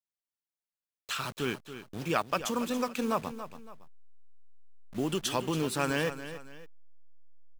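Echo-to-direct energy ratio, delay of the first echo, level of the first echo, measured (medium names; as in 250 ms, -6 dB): -11.5 dB, 281 ms, -12.0 dB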